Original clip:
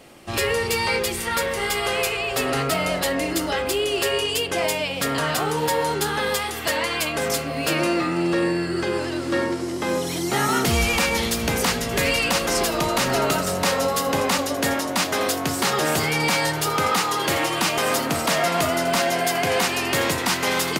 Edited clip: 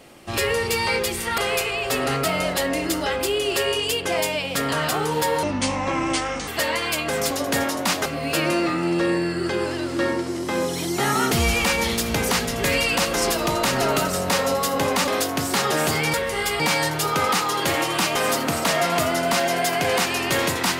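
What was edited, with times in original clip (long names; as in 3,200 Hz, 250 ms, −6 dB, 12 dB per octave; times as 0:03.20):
0:01.38–0:01.84: move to 0:16.22
0:05.89–0:06.56: play speed 64%
0:14.41–0:15.16: move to 0:07.39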